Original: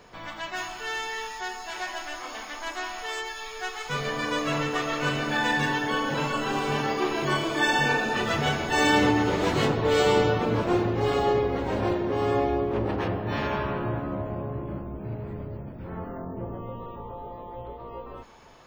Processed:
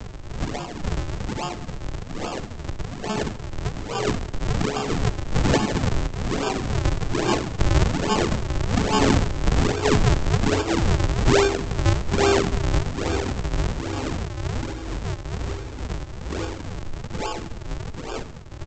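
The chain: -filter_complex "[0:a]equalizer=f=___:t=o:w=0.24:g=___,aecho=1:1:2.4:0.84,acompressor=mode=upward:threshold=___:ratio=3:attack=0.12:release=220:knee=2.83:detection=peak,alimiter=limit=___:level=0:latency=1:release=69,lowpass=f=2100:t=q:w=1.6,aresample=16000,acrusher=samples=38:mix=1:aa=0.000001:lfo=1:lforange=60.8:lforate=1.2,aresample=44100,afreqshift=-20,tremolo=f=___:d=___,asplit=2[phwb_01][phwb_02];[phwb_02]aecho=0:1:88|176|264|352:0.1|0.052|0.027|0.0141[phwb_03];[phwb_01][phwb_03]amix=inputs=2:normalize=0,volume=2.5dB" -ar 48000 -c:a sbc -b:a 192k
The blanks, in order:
82, 6.5, -22dB, -11dB, 2.2, 0.47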